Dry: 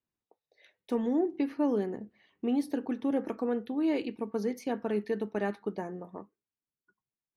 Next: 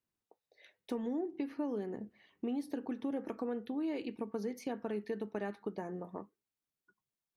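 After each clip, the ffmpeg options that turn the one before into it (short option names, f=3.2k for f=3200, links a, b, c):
-af "acompressor=threshold=-36dB:ratio=3"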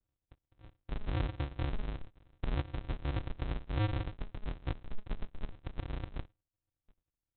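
-af "alimiter=level_in=9dB:limit=-24dB:level=0:latency=1:release=428,volume=-9dB,aresample=8000,acrusher=samples=38:mix=1:aa=0.000001,aresample=44100,volume=7.5dB"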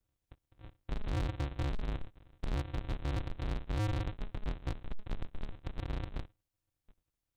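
-af "asoftclip=type=hard:threshold=-34dB,volume=3.5dB"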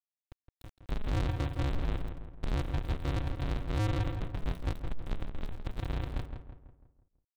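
-filter_complex "[0:a]aeval=exprs='val(0)*gte(abs(val(0)),0.00335)':c=same,asplit=2[a][b];[b]adelay=165,lowpass=f=2k:p=1,volume=-7dB,asplit=2[c][d];[d]adelay=165,lowpass=f=2k:p=1,volume=0.48,asplit=2[e][f];[f]adelay=165,lowpass=f=2k:p=1,volume=0.48,asplit=2[g][h];[h]adelay=165,lowpass=f=2k:p=1,volume=0.48,asplit=2[i][j];[j]adelay=165,lowpass=f=2k:p=1,volume=0.48,asplit=2[k][l];[l]adelay=165,lowpass=f=2k:p=1,volume=0.48[m];[a][c][e][g][i][k][m]amix=inputs=7:normalize=0,volume=3dB"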